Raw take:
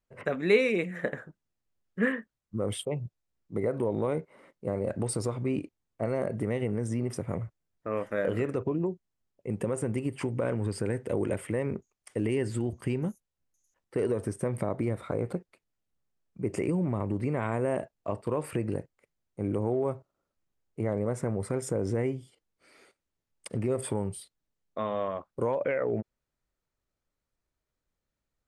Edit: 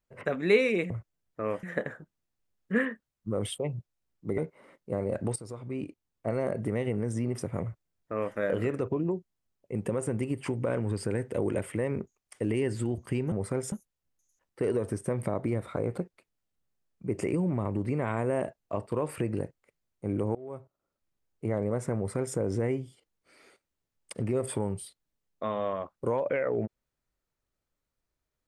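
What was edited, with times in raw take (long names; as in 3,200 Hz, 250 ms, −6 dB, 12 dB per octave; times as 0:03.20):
0:03.65–0:04.13: remove
0:05.11–0:06.03: fade in, from −15 dB
0:07.37–0:08.10: duplicate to 0:00.90
0:19.70–0:20.80: fade in equal-power, from −22 dB
0:21.31–0:21.71: duplicate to 0:13.07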